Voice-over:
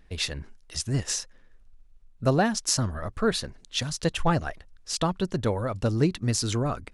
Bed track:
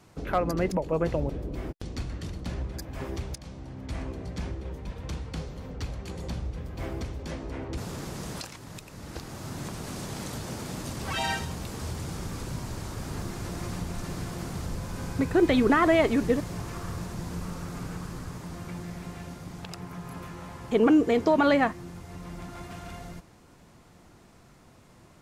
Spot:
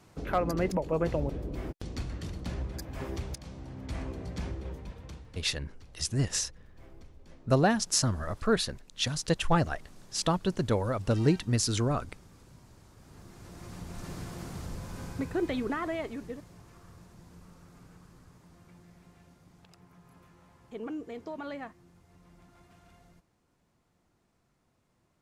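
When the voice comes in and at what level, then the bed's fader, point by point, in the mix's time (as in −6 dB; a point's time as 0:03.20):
5.25 s, −1.5 dB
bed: 0:04.70 −2 dB
0:05.63 −20 dB
0:12.96 −20 dB
0:14.07 −5.5 dB
0:15.01 −5.5 dB
0:16.56 −18 dB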